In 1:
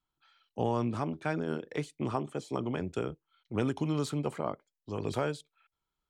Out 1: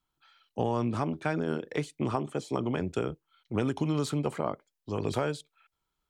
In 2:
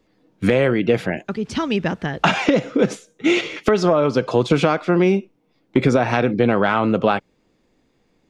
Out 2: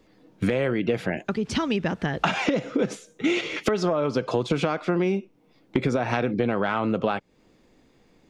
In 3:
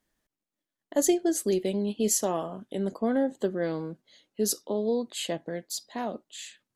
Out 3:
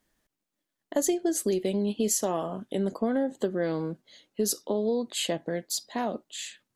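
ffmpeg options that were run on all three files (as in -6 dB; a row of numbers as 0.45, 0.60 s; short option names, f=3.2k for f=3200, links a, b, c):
-af "acompressor=threshold=-28dB:ratio=3,volume=4dB"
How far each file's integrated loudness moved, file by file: +2.5, -6.5, -0.5 LU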